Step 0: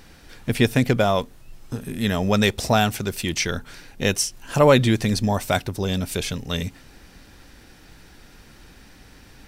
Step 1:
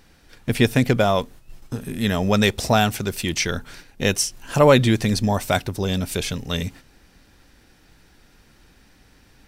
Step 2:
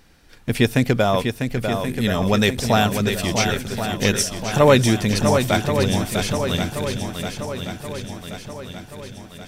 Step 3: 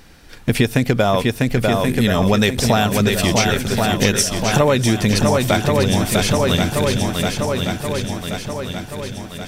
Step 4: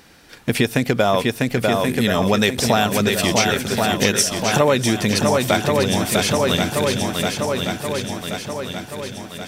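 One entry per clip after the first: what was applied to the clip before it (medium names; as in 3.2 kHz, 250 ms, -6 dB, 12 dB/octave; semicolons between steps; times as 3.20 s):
gate -41 dBFS, range -7 dB; trim +1 dB
shuffle delay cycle 1079 ms, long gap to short 1.5:1, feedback 52%, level -6.5 dB
compression 6:1, threshold -20 dBFS, peak gain reduction 11.5 dB; trim +8 dB
high-pass 190 Hz 6 dB/octave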